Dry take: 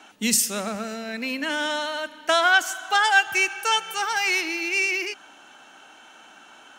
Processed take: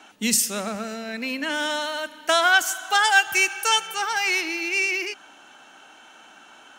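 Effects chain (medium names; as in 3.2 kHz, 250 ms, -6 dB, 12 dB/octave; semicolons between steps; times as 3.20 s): 1.54–3.86 s: treble shelf 10 kHz -> 5 kHz +9 dB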